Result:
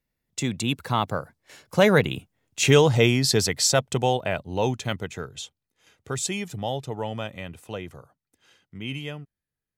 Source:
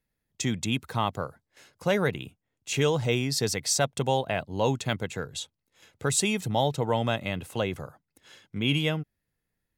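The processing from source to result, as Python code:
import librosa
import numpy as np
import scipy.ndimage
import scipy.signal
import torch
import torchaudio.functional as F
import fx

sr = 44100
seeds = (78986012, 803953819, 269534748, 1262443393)

y = fx.doppler_pass(x, sr, speed_mps=19, closest_m=19.0, pass_at_s=2.41)
y = y * librosa.db_to_amplitude(8.5)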